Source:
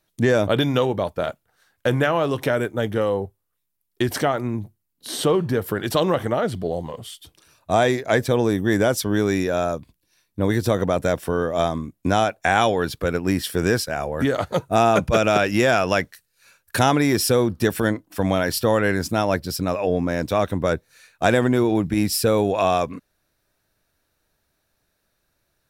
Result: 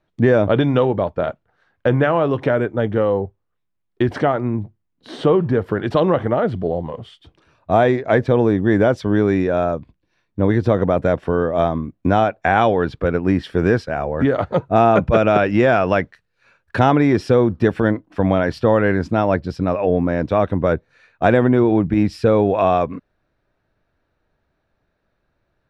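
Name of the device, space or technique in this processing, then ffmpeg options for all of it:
phone in a pocket: -af "lowpass=3.2k,highshelf=f=2.1k:g=-9,volume=4.5dB"

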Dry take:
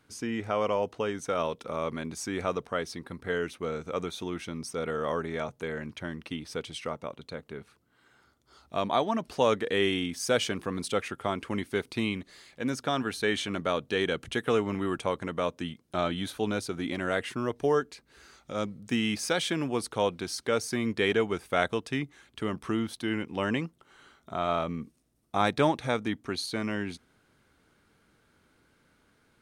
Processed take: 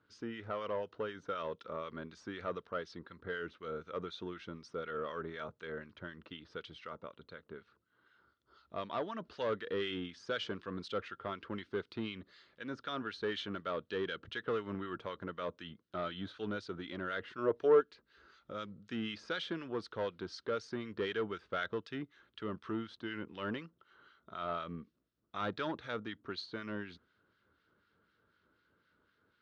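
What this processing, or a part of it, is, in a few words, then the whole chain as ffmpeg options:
guitar amplifier with harmonic tremolo: -filter_complex "[0:a]acrossover=split=1400[a][b];[a]aeval=exprs='val(0)*(1-0.7/2+0.7/2*cos(2*PI*4*n/s))':c=same[c];[b]aeval=exprs='val(0)*(1-0.7/2-0.7/2*cos(2*PI*4*n/s))':c=same[d];[c][d]amix=inputs=2:normalize=0,asoftclip=type=tanh:threshold=-22.5dB,highpass=76,equalizer=f=140:t=q:w=4:g=-7,equalizer=f=250:t=q:w=4:g=-5,equalizer=f=770:t=q:w=4:g=-9,equalizer=f=1.4k:t=q:w=4:g=5,equalizer=f=2.3k:t=q:w=4:g=-7,lowpass=f=4.3k:w=0.5412,lowpass=f=4.3k:w=1.3066,asettb=1/sr,asplit=3[e][f][g];[e]atrim=end=17.384[h];[f]atrim=start=17.38:end=17.81,asetpts=PTS-STARTPTS,afade=t=in:d=0.004:c=qsin,afade=t=out:st=0.426:d=0.004:c=qsin,equalizer=f=560:w=0.68:g=10[i];[g]atrim=start=17.806[j];[h][i]acrossfade=d=0.004:c1=hsin:c2=qsin[k];[k][j]acrossfade=d=0.004:c1=qsin:c2=hsin,volume=-4dB"

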